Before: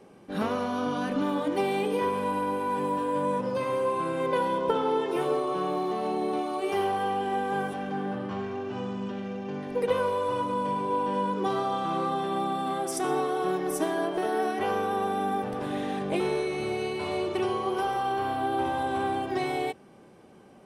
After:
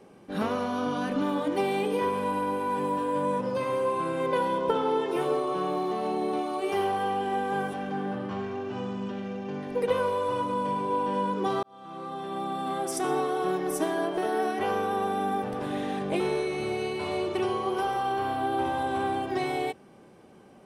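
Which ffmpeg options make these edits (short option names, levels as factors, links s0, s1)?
-filter_complex "[0:a]asplit=2[s0][s1];[s0]atrim=end=11.63,asetpts=PTS-STARTPTS,afade=t=out:st=11.626:d=0.004:c=hsin[s2];[s1]atrim=start=11.63,asetpts=PTS-STARTPTS,afade=t=in:d=1.21[s3];[s2][s3]concat=n=2:v=0:a=1"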